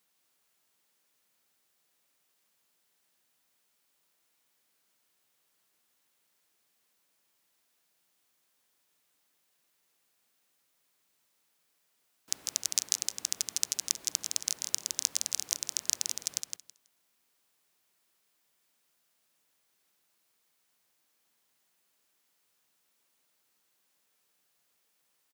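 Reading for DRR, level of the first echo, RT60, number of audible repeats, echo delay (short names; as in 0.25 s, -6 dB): none, -6.0 dB, none, 2, 0.163 s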